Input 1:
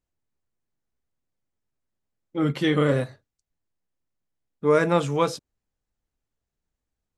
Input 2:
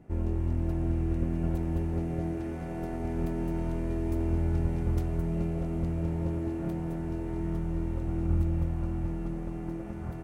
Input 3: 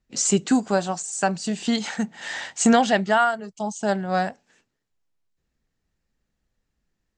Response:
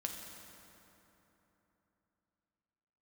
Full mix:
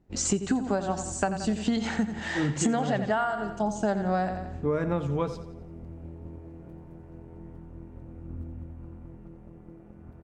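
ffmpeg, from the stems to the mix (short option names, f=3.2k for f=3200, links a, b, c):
-filter_complex "[0:a]lowpass=8k,lowshelf=f=230:g=9.5,volume=-6dB,asplit=2[a][b];[b]volume=-14.5dB[c];[1:a]tremolo=f=170:d=0.75,volume=-9dB,asplit=2[d][e];[e]volume=-7.5dB[f];[2:a]volume=2.5dB,asplit=2[g][h];[h]volume=-11.5dB[i];[c][f][i]amix=inputs=3:normalize=0,aecho=0:1:87|174|261|348|435|522:1|0.46|0.212|0.0973|0.0448|0.0206[j];[a][d][g][j]amix=inputs=4:normalize=0,highshelf=f=2.3k:g=-9.5,acompressor=threshold=-22dB:ratio=16"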